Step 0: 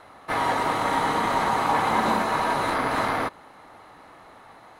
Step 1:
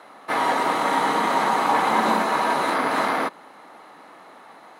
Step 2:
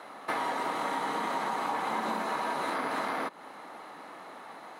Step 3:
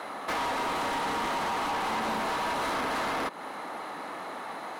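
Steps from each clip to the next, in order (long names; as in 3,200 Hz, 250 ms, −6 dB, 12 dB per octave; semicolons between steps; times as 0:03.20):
high-pass filter 180 Hz 24 dB per octave; level +2.5 dB
downward compressor 5 to 1, threshold −30 dBFS, peak gain reduction 13 dB
soft clipping −36 dBFS, distortion −8 dB; level +8.5 dB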